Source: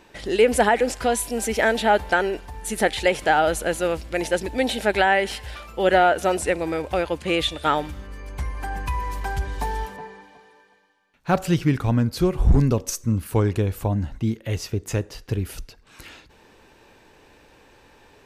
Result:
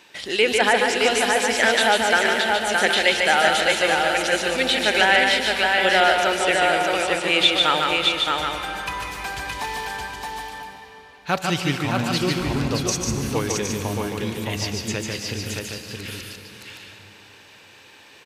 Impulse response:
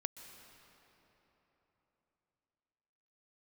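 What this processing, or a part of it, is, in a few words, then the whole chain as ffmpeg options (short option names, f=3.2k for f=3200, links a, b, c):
PA in a hall: -filter_complex "[0:a]highpass=110,equalizer=f=3.3k:t=o:w=1.6:g=5,aecho=1:1:147:0.631[a];[1:a]atrim=start_sample=2205[b];[a][b]afir=irnorm=-1:irlink=0,aecho=1:1:619:0.668,acrossover=split=7500[c][d];[d]acompressor=threshold=-47dB:ratio=4:attack=1:release=60[e];[c][e]amix=inputs=2:normalize=0,tiltshelf=f=1.1k:g=-5,volume=1dB"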